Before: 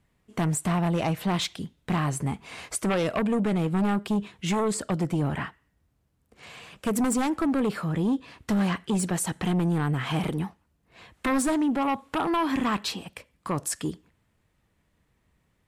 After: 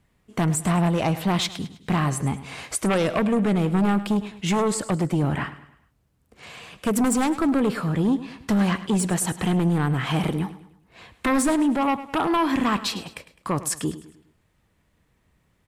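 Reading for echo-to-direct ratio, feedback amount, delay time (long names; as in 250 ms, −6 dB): −14.0 dB, 43%, 104 ms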